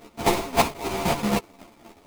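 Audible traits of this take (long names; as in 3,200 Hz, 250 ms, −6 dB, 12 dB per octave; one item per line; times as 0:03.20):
a buzz of ramps at a fixed pitch in blocks of 64 samples
chopped level 3.8 Hz, depth 60%, duty 30%
aliases and images of a low sample rate 1,600 Hz, jitter 20%
a shimmering, thickened sound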